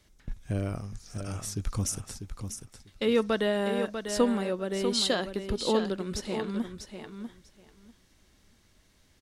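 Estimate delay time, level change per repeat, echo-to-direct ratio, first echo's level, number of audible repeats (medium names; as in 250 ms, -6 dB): 645 ms, -16.0 dB, -8.0 dB, -8.0 dB, 2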